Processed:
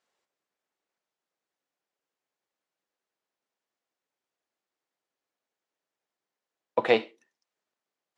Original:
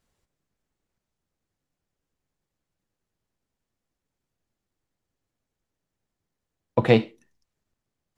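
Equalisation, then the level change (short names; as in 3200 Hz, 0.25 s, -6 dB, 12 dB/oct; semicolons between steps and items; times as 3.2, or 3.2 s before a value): HPF 480 Hz 12 dB/oct; air absorption 57 m; 0.0 dB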